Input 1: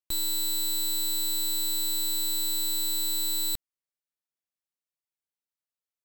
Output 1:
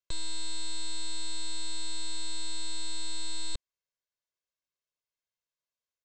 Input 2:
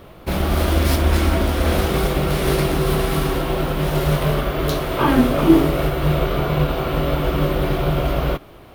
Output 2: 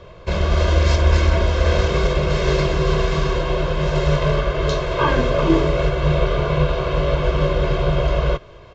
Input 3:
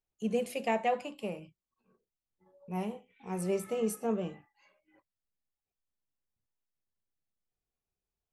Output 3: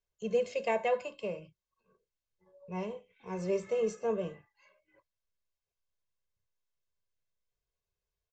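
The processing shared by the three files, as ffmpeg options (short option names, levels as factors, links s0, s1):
-filter_complex "[0:a]aecho=1:1:1.9:0.75,acrossover=split=290|2500[s0][s1][s2];[s2]acrusher=bits=6:mode=log:mix=0:aa=0.000001[s3];[s0][s1][s3]amix=inputs=3:normalize=0,aresample=16000,aresample=44100,volume=0.841"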